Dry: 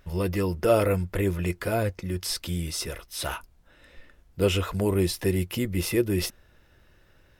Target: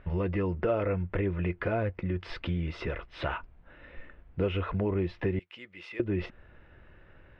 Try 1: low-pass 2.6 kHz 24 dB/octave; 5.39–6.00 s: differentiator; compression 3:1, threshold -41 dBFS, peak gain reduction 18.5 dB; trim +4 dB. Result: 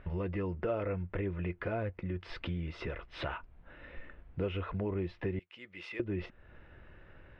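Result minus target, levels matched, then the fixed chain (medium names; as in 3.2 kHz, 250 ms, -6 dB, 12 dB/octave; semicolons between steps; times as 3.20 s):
compression: peak gain reduction +5.5 dB
low-pass 2.6 kHz 24 dB/octave; 5.39–6.00 s: differentiator; compression 3:1, threshold -32.5 dBFS, peak gain reduction 12.5 dB; trim +4 dB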